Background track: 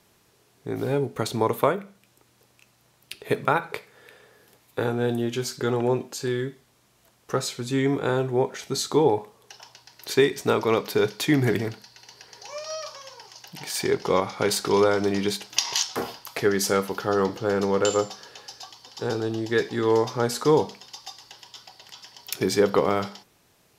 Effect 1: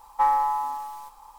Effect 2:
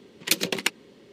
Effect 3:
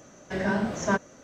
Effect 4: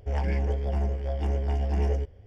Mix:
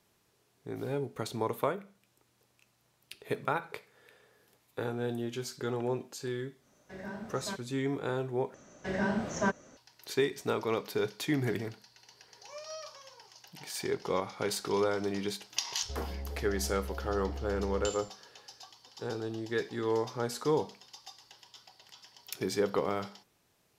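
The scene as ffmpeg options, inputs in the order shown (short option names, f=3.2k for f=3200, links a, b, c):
-filter_complex "[3:a]asplit=2[a][b];[0:a]volume=-9.5dB[c];[a]bandreject=f=3k:w=13[d];[4:a]acompressor=threshold=-29dB:ratio=6:attack=3.2:release=140:knee=1:detection=peak[e];[c]asplit=2[f][g];[f]atrim=end=8.544[h];[b]atrim=end=1.23,asetpts=PTS-STARTPTS,volume=-4.5dB[i];[g]atrim=start=9.766[j];[d]atrim=end=1.23,asetpts=PTS-STARTPTS,volume=-15.5dB,afade=t=in:d=0.1,afade=t=out:st=1.13:d=0.1,adelay=6590[k];[e]atrim=end=2.26,asetpts=PTS-STARTPTS,volume=-7dB,afade=t=in:d=0.004:c=hsin,afade=t=out:st=2.256:d=0.004:c=hsin,adelay=15830[l];[h][i]acrossfade=d=0.004:c1=hsin:c2=hsin[m];[m][j]acrossfade=d=0.004:c1=hsin:c2=hsin[n];[n][k][l]amix=inputs=3:normalize=0"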